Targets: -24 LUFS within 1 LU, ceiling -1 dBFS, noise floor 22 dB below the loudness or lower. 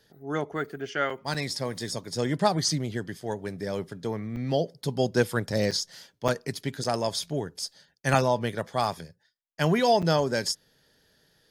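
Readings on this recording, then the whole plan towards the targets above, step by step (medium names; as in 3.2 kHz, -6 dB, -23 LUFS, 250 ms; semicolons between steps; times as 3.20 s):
dropouts 6; longest dropout 6.3 ms; loudness -28.5 LUFS; peak level -6.5 dBFS; loudness target -24.0 LUFS
-> interpolate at 1.34/4.36/5.71/6.28/6.84/10.02 s, 6.3 ms; trim +4.5 dB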